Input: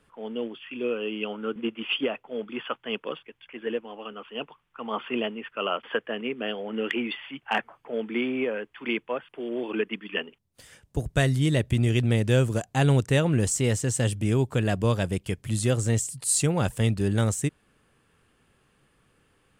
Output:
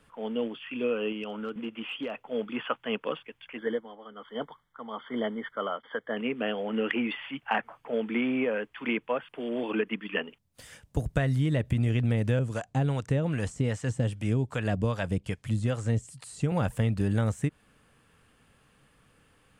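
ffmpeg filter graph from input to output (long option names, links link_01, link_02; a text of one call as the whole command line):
ffmpeg -i in.wav -filter_complex "[0:a]asettb=1/sr,asplit=3[link_01][link_02][link_03];[link_01]atrim=end=1.124[link_04];[link_02]atrim=start=1.12:end=2.22,asetpts=PTS-STARTPTS,afade=type=in:duration=0.004:curve=qsin,afade=type=out:start_time=1.096:duration=0.004:curve=qsin,acompressor=threshold=-35dB:ratio=2.5:attack=3.2:release=140:knee=1:detection=peak,asoftclip=type=hard:threshold=-28dB[link_05];[link_03]atrim=start=2.216[link_06];[link_04][link_05]acrossfade=duration=0.004:curve1=hsin:curve2=qsin[link_07];[link_07][link_06]acrossfade=duration=0.004:curve1=qsin:curve2=hsin,asettb=1/sr,asplit=3[link_08][link_09][link_10];[link_08]atrim=end=3.584[link_11];[link_09]atrim=start=3.58:end=6.17,asetpts=PTS-STARTPTS,afade=type=in:duration=0.004:curve=qsin,afade=type=out:start_time=2.586:duration=0.004:curve=qsin,tremolo=f=1.1:d=0.68,asuperstop=centerf=2600:order=20:qfactor=3.3[link_12];[link_10]atrim=start=6.166[link_13];[link_11][link_12]acrossfade=duration=0.004:curve1=hsin:curve2=qsin[link_14];[link_14][link_13]acrossfade=duration=0.004:curve1=qsin:curve2=hsin,asettb=1/sr,asplit=3[link_15][link_16][link_17];[link_15]atrim=end=12.394[link_18];[link_16]atrim=start=12.39:end=16.52,asetpts=PTS-STARTPTS,afade=type=in:duration=0.004:curve=qsin,afade=type=out:start_time=4.126:duration=0.004:curve=qsin,lowpass=9100,acrossover=split=660[link_19][link_20];[link_19]aeval=exprs='val(0)*(1-0.7/2+0.7/2*cos(2*PI*2.5*n/s))':channel_layout=same[link_21];[link_20]aeval=exprs='val(0)*(1-0.7/2-0.7/2*cos(2*PI*2.5*n/s))':channel_layout=same[link_22];[link_21][link_22]amix=inputs=2:normalize=0[link_23];[link_17]atrim=start=16.516[link_24];[link_18][link_23]acrossfade=duration=0.004:curve1=hsin:curve2=qsin[link_25];[link_25][link_24]acrossfade=duration=0.004:curve1=qsin:curve2=hsin,acrossover=split=2600[link_26][link_27];[link_27]acompressor=threshold=-48dB:ratio=4:attack=1:release=60[link_28];[link_26][link_28]amix=inputs=2:normalize=0,equalizer=frequency=370:width_type=o:width=0.2:gain=-9.5,acompressor=threshold=-25dB:ratio=6,volume=2.5dB" out.wav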